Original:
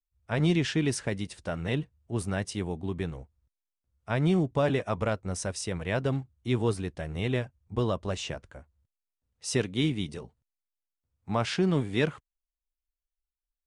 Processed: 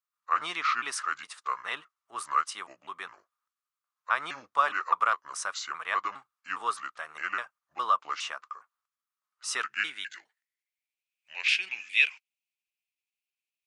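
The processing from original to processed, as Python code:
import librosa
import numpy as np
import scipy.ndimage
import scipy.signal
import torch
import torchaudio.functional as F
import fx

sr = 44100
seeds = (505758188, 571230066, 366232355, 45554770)

y = fx.pitch_trill(x, sr, semitones=-5.0, every_ms=205)
y = fx.filter_sweep_highpass(y, sr, from_hz=1200.0, to_hz=2500.0, start_s=9.48, end_s=11.02, q=7.4)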